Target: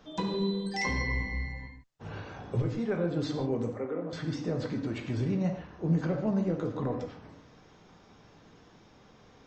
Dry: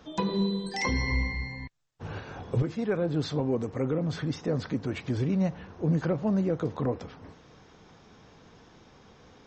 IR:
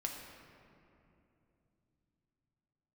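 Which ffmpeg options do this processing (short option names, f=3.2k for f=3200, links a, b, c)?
-filter_complex "[0:a]asettb=1/sr,asplit=3[a][b][c];[a]atrim=end=3.734[d];[b]atrim=start=3.73:end=4.13,asetpts=PTS-STARTPTS,afade=t=in:d=0.004:c=qsin,afade=t=out:st=0.396:d=0.004:c=qsin,acrossover=split=260 2300:gain=0.0891 1 0.158[e][f][g];[e][f][g]amix=inputs=3:normalize=0[h];[c]atrim=start=4.126[i];[d][h]acrossfade=d=0.004:c1=hsin:c2=qsin[j];[j][i]acrossfade=d=0.004:c1=qsin:c2=hsin[k];[1:a]atrim=start_sample=2205,afade=t=out:st=0.21:d=0.01,atrim=end_sample=9702[l];[k][l]afir=irnorm=-1:irlink=0,volume=-2dB"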